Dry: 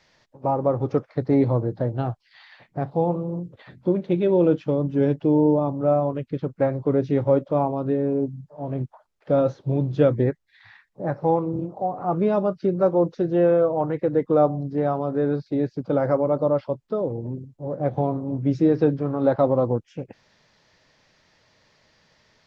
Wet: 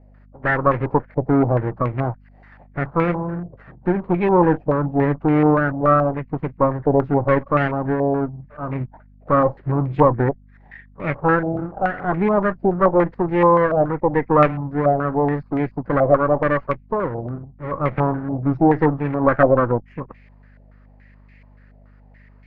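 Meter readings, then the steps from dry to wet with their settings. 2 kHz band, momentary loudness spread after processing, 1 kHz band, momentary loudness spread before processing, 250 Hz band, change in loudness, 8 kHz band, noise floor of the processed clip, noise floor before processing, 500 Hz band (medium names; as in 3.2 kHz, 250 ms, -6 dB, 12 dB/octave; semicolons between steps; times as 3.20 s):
+15.5 dB, 12 LU, +8.5 dB, 11 LU, +2.5 dB, +3.5 dB, no reading, -49 dBFS, -65 dBFS, +2.0 dB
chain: comb filter that takes the minimum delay 0.43 ms; hum 50 Hz, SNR 27 dB; step-sequenced low-pass 7 Hz 690–2200 Hz; trim +1.5 dB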